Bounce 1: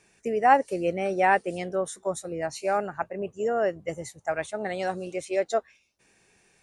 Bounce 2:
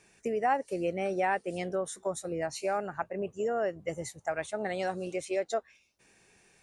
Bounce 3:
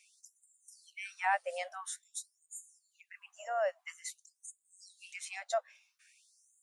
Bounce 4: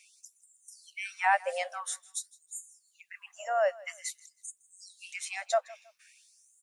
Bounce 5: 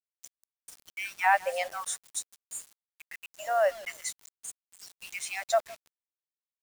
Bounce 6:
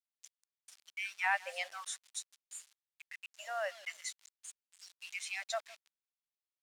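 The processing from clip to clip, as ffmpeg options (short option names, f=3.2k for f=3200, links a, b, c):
-af "acompressor=threshold=-31dB:ratio=2"
-af "afftfilt=real='re*gte(b*sr/1024,490*pow(6700/490,0.5+0.5*sin(2*PI*0.49*pts/sr)))':imag='im*gte(b*sr/1024,490*pow(6700/490,0.5+0.5*sin(2*PI*0.49*pts/sr)))':win_size=1024:overlap=0.75"
-af "aecho=1:1:160|320:0.0794|0.0222,volume=5.5dB"
-af "acrusher=bits=7:mix=0:aa=0.000001,volume=2dB"
-af "bandpass=f=3.2k:t=q:w=0.73:csg=0,volume=-2.5dB"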